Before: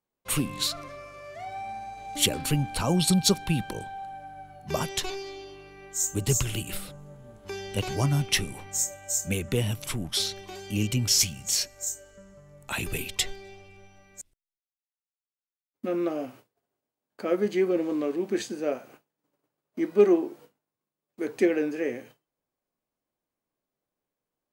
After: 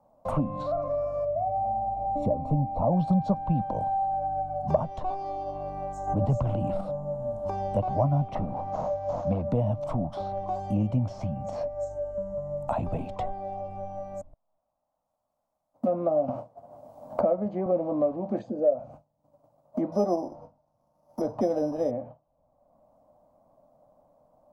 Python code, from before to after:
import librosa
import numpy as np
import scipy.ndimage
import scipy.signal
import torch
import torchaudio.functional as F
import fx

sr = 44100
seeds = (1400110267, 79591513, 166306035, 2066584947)

y = fx.moving_average(x, sr, points=28, at=(1.24, 2.91), fade=0.02)
y = fx.sustainer(y, sr, db_per_s=36.0, at=(4.99, 6.81))
y = fx.cvsd(y, sr, bps=32000, at=(8.35, 9.45))
y = fx.band_squash(y, sr, depth_pct=70, at=(16.28, 17.66))
y = fx.envelope_sharpen(y, sr, power=1.5, at=(18.39, 18.79))
y = fx.resample_bad(y, sr, factor=8, down='none', up='zero_stuff', at=(19.92, 21.91))
y = fx.env_lowpass_down(y, sr, base_hz=2800.0, full_db=-25.5)
y = fx.curve_eq(y, sr, hz=(270.0, 400.0, 600.0, 1100.0, 1700.0, 2900.0, 5500.0), db=(0, -14, 13, -1, -22, -25, -21))
y = fx.band_squash(y, sr, depth_pct=70)
y = y * librosa.db_to_amplitude(2.0)